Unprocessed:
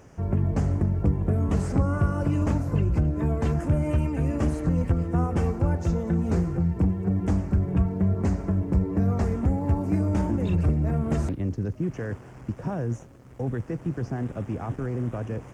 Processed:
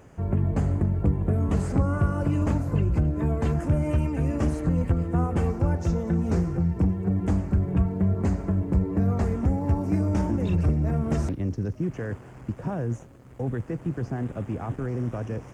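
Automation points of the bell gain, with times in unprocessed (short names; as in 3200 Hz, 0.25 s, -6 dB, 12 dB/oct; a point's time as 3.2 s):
bell 5600 Hz 0.22 oct
-12 dB
from 1.33 s -5 dB
from 3.62 s +1.5 dB
from 4.61 s -7.5 dB
from 5.5 s +3 dB
from 6.96 s -4.5 dB
from 9.4 s +5 dB
from 11.87 s -5.5 dB
from 14.88 s +5 dB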